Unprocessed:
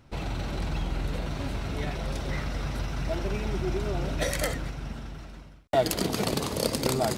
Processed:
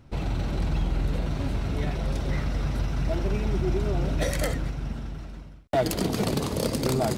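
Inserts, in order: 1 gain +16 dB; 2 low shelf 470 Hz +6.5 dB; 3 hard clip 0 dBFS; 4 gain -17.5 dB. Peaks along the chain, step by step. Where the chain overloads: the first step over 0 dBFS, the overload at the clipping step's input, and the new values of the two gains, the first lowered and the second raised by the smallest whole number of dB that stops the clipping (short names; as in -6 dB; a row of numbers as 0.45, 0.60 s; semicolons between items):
+6.0, +9.0, 0.0, -17.5 dBFS; step 1, 9.0 dB; step 1 +7 dB, step 4 -8.5 dB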